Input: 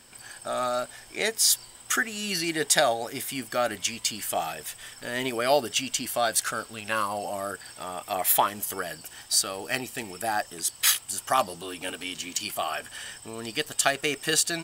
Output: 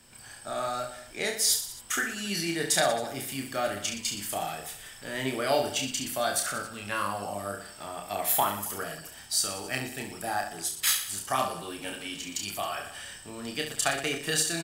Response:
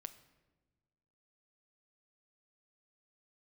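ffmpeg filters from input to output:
-filter_complex "[0:a]acrossover=split=210|1600[link_01][link_02][link_03];[link_01]acontrast=29[link_04];[link_04][link_02][link_03]amix=inputs=3:normalize=0,aecho=1:1:30|69|119.7|185.6|271.3:0.631|0.398|0.251|0.158|0.1,volume=-5dB"

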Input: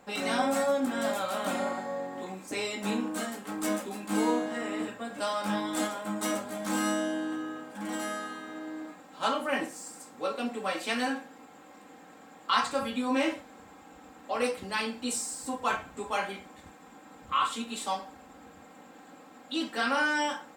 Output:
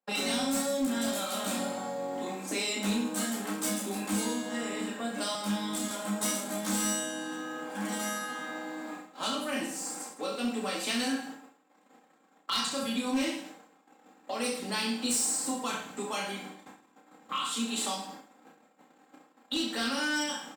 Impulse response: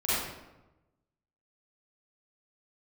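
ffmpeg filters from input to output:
-filter_complex "[0:a]agate=range=-40dB:threshold=-48dB:ratio=16:detection=peak,highpass=frequency=180:width=0.5412,highpass=frequency=180:width=1.3066,acrossover=split=230|3300[link_01][link_02][link_03];[link_02]acompressor=threshold=-41dB:ratio=8[link_04];[link_01][link_04][link_03]amix=inputs=3:normalize=0,aecho=1:1:30|66|109.2|161|223.2:0.631|0.398|0.251|0.158|0.1,asoftclip=type=hard:threshold=-29dB,asettb=1/sr,asplit=3[link_05][link_06][link_07];[link_05]atrim=end=5.354[link_08];[link_06]atrim=start=5.35:end=5.91,asetpts=PTS-STARTPTS,afade=type=in:duration=0.004:curve=qsin,afade=type=out:start_time=0.556:duration=0.004:curve=qsin,acrossover=split=360[link_09][link_10];[link_10]acompressor=threshold=-38dB:ratio=6[link_11];[link_09][link_11]amix=inputs=2:normalize=0[link_12];[link_07]atrim=start=5.906[link_13];[link_08][link_12]acrossfade=duration=0.004:curve1=hsin:curve2=qsin[link_14];[link_14][link_13]acrossfade=duration=0.004:curve1=qsin:curve2=hsin,volume=5dB"

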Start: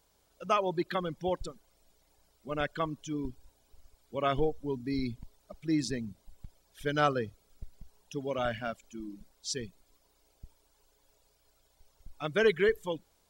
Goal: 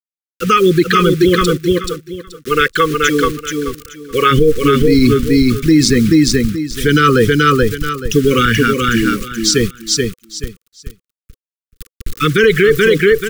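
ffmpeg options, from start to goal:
ffmpeg -i in.wav -filter_complex "[0:a]asettb=1/sr,asplit=3[link_01][link_02][link_03];[link_01]atrim=end=1.354[link_04];[link_02]atrim=start=1.35:end=4.31,asetpts=PTS-STARTPTS,afade=type=in:duration=0.004:curve=qsin,afade=type=out:start_time=2.956:duration=0.004:curve=qsin,lowshelf=frequency=350:width_type=q:width=1.5:gain=-8.5[link_05];[link_03]atrim=start=4.306[link_06];[link_04][link_05]acrossfade=duration=0.004:curve1=hsin:curve2=qsin[link_07];[link_07][link_06]acrossfade=duration=0.004:curve1=qsin:curve2=hsin,acrusher=bits=8:mix=0:aa=0.000001,asuperstop=centerf=760:order=20:qfactor=1.2,aecho=1:1:430|860|1290:0.596|0.131|0.0288,alimiter=level_in=27dB:limit=-1dB:release=50:level=0:latency=1,volume=-1dB" out.wav

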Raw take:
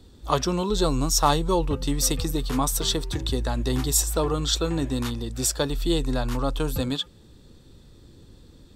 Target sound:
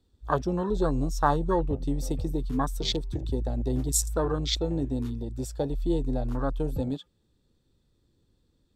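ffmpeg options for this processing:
ffmpeg -i in.wav -af "afwtdn=0.0501,volume=-2.5dB" out.wav

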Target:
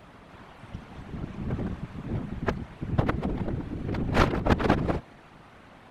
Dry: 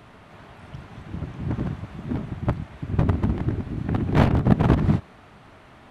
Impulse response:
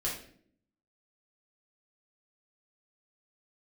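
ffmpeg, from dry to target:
-filter_complex "[0:a]aeval=exprs='0.75*(cos(1*acos(clip(val(0)/0.75,-1,1)))-cos(1*PI/2))+0.237*(cos(7*acos(clip(val(0)/0.75,-1,1)))-cos(7*PI/2))':channel_layout=same,asplit=2[link_01][link_02];[link_02]asetrate=52444,aresample=44100,atempo=0.840896,volume=-13dB[link_03];[link_01][link_03]amix=inputs=2:normalize=0,afftfilt=real='hypot(re,im)*cos(2*PI*random(0))':imag='hypot(re,im)*sin(2*PI*random(1))':win_size=512:overlap=0.75,volume=2dB"

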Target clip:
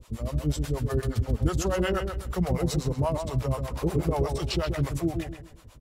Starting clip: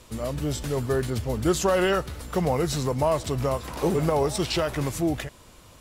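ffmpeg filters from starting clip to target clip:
ffmpeg -i in.wav -filter_complex "[0:a]lowshelf=frequency=160:gain=10.5,acrossover=split=490[link_01][link_02];[link_01]aeval=exprs='val(0)*(1-1/2+1/2*cos(2*PI*8.3*n/s))':channel_layout=same[link_03];[link_02]aeval=exprs='val(0)*(1-1/2-1/2*cos(2*PI*8.3*n/s))':channel_layout=same[link_04];[link_03][link_04]amix=inputs=2:normalize=0,asplit=2[link_05][link_06];[link_06]adelay=130,lowpass=frequency=2800:poles=1,volume=-6dB,asplit=2[link_07][link_08];[link_08]adelay=130,lowpass=frequency=2800:poles=1,volume=0.32,asplit=2[link_09][link_10];[link_10]adelay=130,lowpass=frequency=2800:poles=1,volume=0.32,asplit=2[link_11][link_12];[link_12]adelay=130,lowpass=frequency=2800:poles=1,volume=0.32[link_13];[link_05][link_07][link_09][link_11][link_13]amix=inputs=5:normalize=0,volume=-2dB" out.wav

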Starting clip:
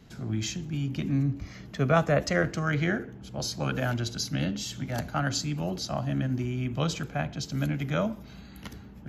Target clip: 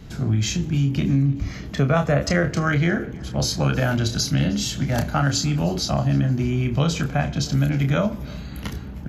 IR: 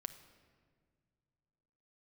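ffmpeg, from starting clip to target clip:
-filter_complex "[0:a]lowshelf=frequency=100:gain=9.5,asplit=2[link_01][link_02];[link_02]adelay=29,volume=-7dB[link_03];[link_01][link_03]amix=inputs=2:normalize=0,acompressor=threshold=-26dB:ratio=3,asplit=2[link_04][link_05];[link_05]aecho=0:1:311|622|933|1244:0.0631|0.0347|0.0191|0.0105[link_06];[link_04][link_06]amix=inputs=2:normalize=0,volume=8.5dB"

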